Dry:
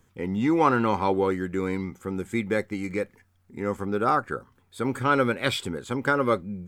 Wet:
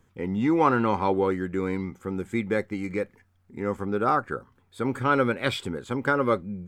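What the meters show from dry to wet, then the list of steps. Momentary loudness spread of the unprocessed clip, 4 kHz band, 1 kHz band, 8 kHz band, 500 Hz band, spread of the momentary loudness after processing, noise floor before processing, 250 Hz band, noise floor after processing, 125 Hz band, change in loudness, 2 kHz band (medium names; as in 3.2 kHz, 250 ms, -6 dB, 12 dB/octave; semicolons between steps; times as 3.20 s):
11 LU, -2.5 dB, -0.5 dB, no reading, 0.0 dB, 11 LU, -65 dBFS, 0.0 dB, -65 dBFS, 0.0 dB, -0.5 dB, -1.0 dB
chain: treble shelf 4.1 kHz -6.5 dB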